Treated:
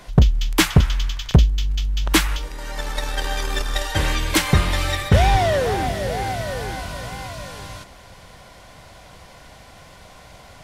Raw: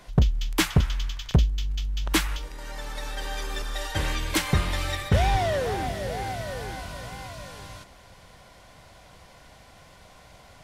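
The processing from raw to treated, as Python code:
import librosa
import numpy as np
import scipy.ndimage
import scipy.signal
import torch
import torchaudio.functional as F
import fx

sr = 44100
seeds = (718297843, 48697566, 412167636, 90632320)

y = fx.transient(x, sr, attack_db=12, sustain_db=-5, at=(2.77, 3.87), fade=0.02)
y = y * 10.0 ** (6.5 / 20.0)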